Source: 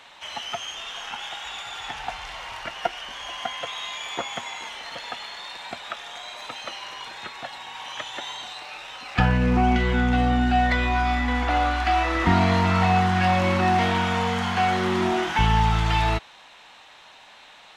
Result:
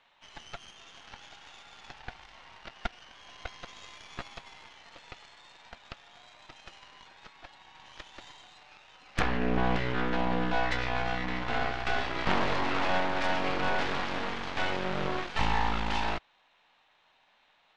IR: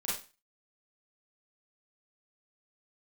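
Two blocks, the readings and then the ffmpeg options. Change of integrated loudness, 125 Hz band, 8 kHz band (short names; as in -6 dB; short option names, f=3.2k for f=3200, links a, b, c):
-7.0 dB, -14.0 dB, -11.5 dB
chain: -af "lowpass=4k,aeval=exprs='0.531*(cos(1*acos(clip(val(0)/0.531,-1,1)))-cos(1*PI/2))+0.211*(cos(3*acos(clip(val(0)/0.531,-1,1)))-cos(3*PI/2))+0.0473*(cos(5*acos(clip(val(0)/0.531,-1,1)))-cos(5*PI/2))+0.106*(cos(6*acos(clip(val(0)/0.531,-1,1)))-cos(6*PI/2))':c=same,volume=-5dB"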